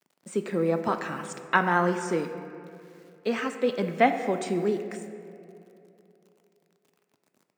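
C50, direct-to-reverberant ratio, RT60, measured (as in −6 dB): 8.5 dB, 7.0 dB, 2.8 s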